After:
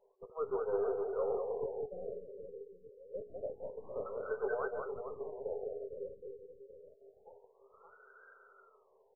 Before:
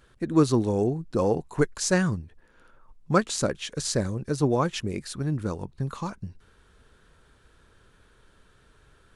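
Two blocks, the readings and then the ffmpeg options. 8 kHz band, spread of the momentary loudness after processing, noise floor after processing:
under -40 dB, 21 LU, -69 dBFS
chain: -af "afftfilt=real='re*between(b*sr/4096,380,4500)':imag='im*between(b*sr/4096,380,4500)':win_size=4096:overlap=0.75,highshelf=f=1.5k:t=q:w=3:g=13,bandreject=f=60:t=h:w=6,bandreject=f=120:t=h:w=6,bandreject=f=180:t=h:w=6,bandreject=f=240:t=h:w=6,bandreject=f=300:t=h:w=6,bandreject=f=360:t=h:w=6,bandreject=f=420:t=h:w=6,bandreject=f=480:t=h:w=6,areverse,acompressor=threshold=-31dB:ratio=5,areverse,flanger=delay=9.5:depth=7.3:regen=-34:speed=0.36:shape=sinusoidal,aeval=exprs='(tanh(39.8*val(0)+0.15)-tanh(0.15))/39.8':c=same,aecho=1:1:200|460|798|1237|1809:0.631|0.398|0.251|0.158|0.1,afftfilt=real='re*lt(b*sr/1024,540*pow(1600/540,0.5+0.5*sin(2*PI*0.27*pts/sr)))':imag='im*lt(b*sr/1024,540*pow(1600/540,0.5+0.5*sin(2*PI*0.27*pts/sr)))':win_size=1024:overlap=0.75,volume=5dB"

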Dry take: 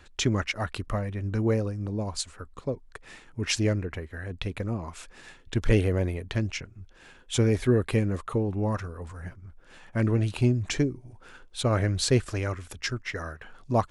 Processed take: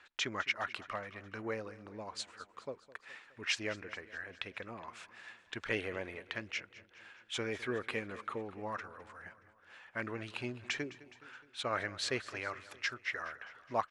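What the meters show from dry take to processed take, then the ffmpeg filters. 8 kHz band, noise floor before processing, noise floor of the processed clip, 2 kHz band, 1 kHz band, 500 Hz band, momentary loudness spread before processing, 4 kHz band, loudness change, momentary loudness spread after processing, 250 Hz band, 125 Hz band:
-12.5 dB, -53 dBFS, -66 dBFS, -2.0 dB, -5.0 dB, -12.0 dB, 16 LU, -6.0 dB, -11.5 dB, 16 LU, -17.0 dB, -24.5 dB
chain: -af "bandpass=f=1.8k:t=q:w=0.88:csg=0,aecho=1:1:209|418|627|836|1045:0.126|0.0755|0.0453|0.0272|0.0163,volume=-1.5dB"

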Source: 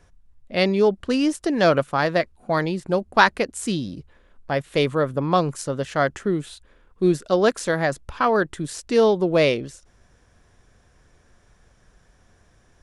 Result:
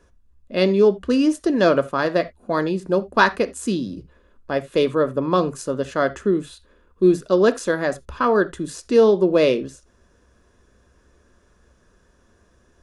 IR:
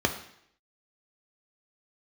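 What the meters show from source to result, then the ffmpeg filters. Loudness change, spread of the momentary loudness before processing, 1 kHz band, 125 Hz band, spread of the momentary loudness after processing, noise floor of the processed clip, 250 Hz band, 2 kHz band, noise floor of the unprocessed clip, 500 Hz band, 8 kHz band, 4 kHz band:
+2.0 dB, 10 LU, -1.0 dB, -2.0 dB, 10 LU, -59 dBFS, +3.0 dB, -1.0 dB, -59 dBFS, +2.5 dB, -1.5 dB, -2.0 dB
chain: -filter_complex "[0:a]asplit=2[a][b];[1:a]atrim=start_sample=2205,atrim=end_sample=3969[c];[b][c]afir=irnorm=-1:irlink=0,volume=-14.5dB[d];[a][d]amix=inputs=2:normalize=0,volume=-3dB"

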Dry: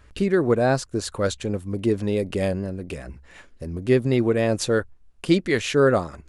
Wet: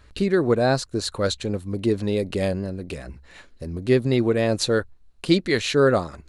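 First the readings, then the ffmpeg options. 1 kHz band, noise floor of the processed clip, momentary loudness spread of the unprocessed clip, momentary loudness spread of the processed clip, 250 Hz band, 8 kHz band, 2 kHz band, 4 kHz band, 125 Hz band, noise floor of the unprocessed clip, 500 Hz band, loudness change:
0.0 dB, -52 dBFS, 16 LU, 15 LU, 0.0 dB, +0.5 dB, 0.0 dB, +4.5 dB, 0.0 dB, -52 dBFS, 0.0 dB, 0.0 dB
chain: -af "equalizer=f=4.1k:t=o:w=0.25:g=9.5"

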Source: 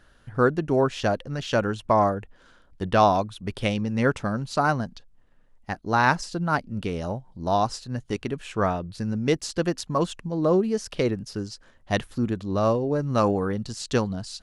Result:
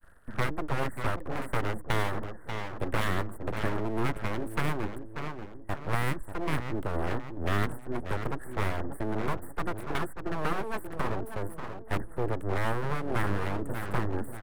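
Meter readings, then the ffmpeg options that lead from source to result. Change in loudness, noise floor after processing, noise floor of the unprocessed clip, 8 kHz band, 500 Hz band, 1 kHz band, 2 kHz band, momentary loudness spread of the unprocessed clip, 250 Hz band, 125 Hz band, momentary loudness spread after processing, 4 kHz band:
-8.0 dB, -42 dBFS, -57 dBFS, -9.5 dB, -10.0 dB, -8.5 dB, -4.5 dB, 10 LU, -9.0 dB, -4.5 dB, 7 LU, -7.5 dB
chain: -filter_complex "[0:a]agate=range=-33dB:threshold=-53dB:ratio=3:detection=peak,acrossover=split=140|590|1800[a][b][c][d];[d]acompressor=threshold=-47dB:ratio=16[e];[a][b][c][e]amix=inputs=4:normalize=0,equalizer=f=260:t=o:w=0.94:g=-5,aeval=exprs='abs(val(0))':c=same,afftfilt=real='re*lt(hypot(re,im),0.447)':imag='im*lt(hypot(re,im),0.447)':win_size=1024:overlap=0.75,asplit=2[f][g];[g]adelay=586,lowpass=f=1.5k:p=1,volume=-11dB,asplit=2[h][i];[i]adelay=586,lowpass=f=1.5k:p=1,volume=0.44,asplit=2[j][k];[k]adelay=586,lowpass=f=1.5k:p=1,volume=0.44,asplit=2[l][m];[m]adelay=586,lowpass=f=1.5k:p=1,volume=0.44,asplit=2[n][o];[o]adelay=586,lowpass=f=1.5k:p=1,volume=0.44[p];[f][h][j][l][n][p]amix=inputs=6:normalize=0,acrossover=split=270|3000[q][r][s];[r]acompressor=threshold=-32dB:ratio=5[t];[q][t][s]amix=inputs=3:normalize=0,asuperstop=centerf=4100:order=20:qfactor=0.68,aeval=exprs='abs(val(0))':c=same,adynamicequalizer=threshold=0.00178:dfrequency=370:dqfactor=3.9:tfrequency=370:tqfactor=3.9:attack=5:release=100:ratio=0.375:range=1.5:mode=boostabove:tftype=bell,volume=4dB"

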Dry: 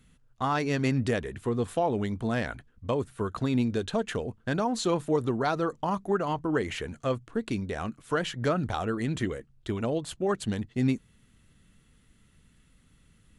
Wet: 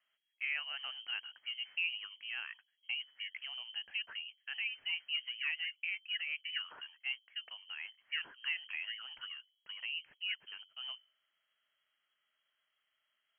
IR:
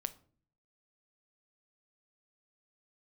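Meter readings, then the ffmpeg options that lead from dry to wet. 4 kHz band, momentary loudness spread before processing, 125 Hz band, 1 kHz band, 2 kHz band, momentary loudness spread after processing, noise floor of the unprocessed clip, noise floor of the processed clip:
+4.0 dB, 7 LU, under -40 dB, -26.0 dB, -1.0 dB, 9 LU, -63 dBFS, -83 dBFS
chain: -filter_complex "[0:a]acrossover=split=380 2000:gain=0.112 1 0.0708[a][b][c];[a][b][c]amix=inputs=3:normalize=0,bandreject=f=47.99:t=h:w=4,bandreject=f=95.98:t=h:w=4,bandreject=f=143.97:t=h:w=4,bandreject=f=191.96:t=h:w=4,bandreject=f=239.95:t=h:w=4,bandreject=f=287.94:t=h:w=4,lowpass=f=2.8k:t=q:w=0.5098,lowpass=f=2.8k:t=q:w=0.6013,lowpass=f=2.8k:t=q:w=0.9,lowpass=f=2.8k:t=q:w=2.563,afreqshift=-3300,volume=-8dB"

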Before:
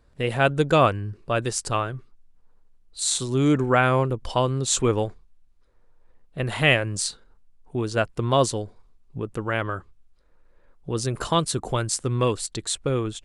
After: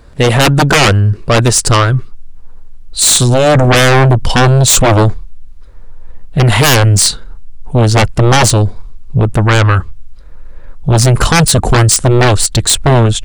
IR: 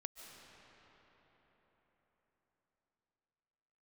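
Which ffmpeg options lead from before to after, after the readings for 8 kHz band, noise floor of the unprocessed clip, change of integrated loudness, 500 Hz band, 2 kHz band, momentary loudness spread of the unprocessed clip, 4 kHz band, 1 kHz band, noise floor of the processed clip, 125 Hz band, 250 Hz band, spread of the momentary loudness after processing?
+17.0 dB, -58 dBFS, +14.5 dB, +11.5 dB, +13.5 dB, 13 LU, +16.0 dB, +12.5 dB, -30 dBFS, +18.5 dB, +12.5 dB, 7 LU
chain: -af "asubboost=boost=2.5:cutoff=190,aeval=exprs='0.631*sin(PI/2*6.31*val(0)/0.631)':c=same"

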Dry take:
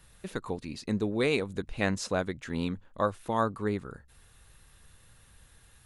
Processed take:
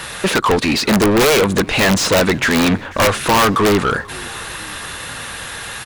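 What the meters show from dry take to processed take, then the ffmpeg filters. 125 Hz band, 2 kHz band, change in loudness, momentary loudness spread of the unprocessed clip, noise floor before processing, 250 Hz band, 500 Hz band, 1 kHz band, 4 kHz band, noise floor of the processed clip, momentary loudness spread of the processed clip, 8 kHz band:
+14.5 dB, +20.0 dB, +17.0 dB, 9 LU, -59 dBFS, +16.0 dB, +16.0 dB, +18.0 dB, +23.0 dB, -31 dBFS, 14 LU, +24.0 dB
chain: -filter_complex "[0:a]asplit=2[a][b];[b]highpass=f=720:p=1,volume=38dB,asoftclip=type=tanh:threshold=-11.5dB[c];[a][c]amix=inputs=2:normalize=0,lowpass=f=3.4k:p=1,volume=-6dB,asplit=5[d][e][f][g][h];[e]adelay=489,afreqshift=-52,volume=-22.5dB[i];[f]adelay=978,afreqshift=-104,volume=-27.2dB[j];[g]adelay=1467,afreqshift=-156,volume=-32dB[k];[h]adelay=1956,afreqshift=-208,volume=-36.7dB[l];[d][i][j][k][l]amix=inputs=5:normalize=0,aeval=exprs='(mod(5.62*val(0)+1,2)-1)/5.62':c=same,volume=6dB"

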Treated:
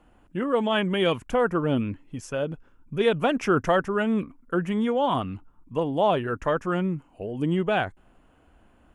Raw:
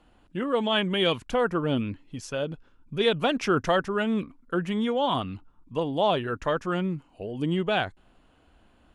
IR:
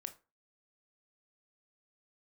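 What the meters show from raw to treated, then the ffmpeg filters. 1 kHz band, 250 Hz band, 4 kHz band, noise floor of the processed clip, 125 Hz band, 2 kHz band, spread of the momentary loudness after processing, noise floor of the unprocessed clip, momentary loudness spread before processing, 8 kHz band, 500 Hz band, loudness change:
+1.5 dB, +2.0 dB, -4.5 dB, -59 dBFS, +2.0 dB, +0.5 dB, 11 LU, -61 dBFS, 11 LU, n/a, +2.0 dB, +1.5 dB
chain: -af "equalizer=f=4.1k:t=o:w=0.79:g=-11.5,volume=2dB"

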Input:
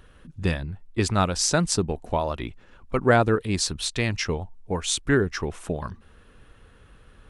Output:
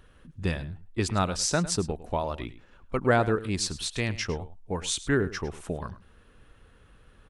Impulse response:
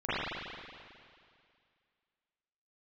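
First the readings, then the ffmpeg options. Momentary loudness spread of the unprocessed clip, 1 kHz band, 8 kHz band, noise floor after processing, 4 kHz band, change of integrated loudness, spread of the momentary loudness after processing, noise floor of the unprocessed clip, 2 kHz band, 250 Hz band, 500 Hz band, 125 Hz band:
12 LU, -4.0 dB, -4.0 dB, -57 dBFS, -4.0 dB, -4.0 dB, 12 LU, -54 dBFS, -4.0 dB, -4.0 dB, -4.0 dB, -4.0 dB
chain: -af "aecho=1:1:105:0.158,volume=-4dB"

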